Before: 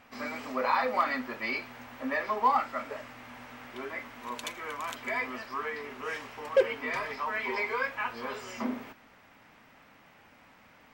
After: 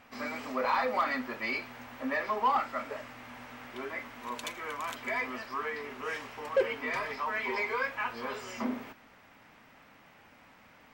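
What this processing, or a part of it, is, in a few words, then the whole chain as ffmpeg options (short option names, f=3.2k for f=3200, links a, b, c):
saturation between pre-emphasis and de-emphasis: -af "highshelf=f=2.9k:g=9.5,asoftclip=type=tanh:threshold=-18.5dB,highshelf=f=2.9k:g=-9.5"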